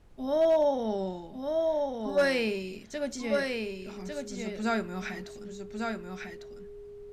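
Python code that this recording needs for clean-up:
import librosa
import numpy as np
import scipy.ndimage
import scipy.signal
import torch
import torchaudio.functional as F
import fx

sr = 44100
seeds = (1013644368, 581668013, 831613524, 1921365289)

y = fx.fix_declip(x, sr, threshold_db=-18.0)
y = fx.notch(y, sr, hz=410.0, q=30.0)
y = fx.noise_reduce(y, sr, print_start_s=6.56, print_end_s=7.06, reduce_db=29.0)
y = fx.fix_echo_inverse(y, sr, delay_ms=1150, level_db=-4.5)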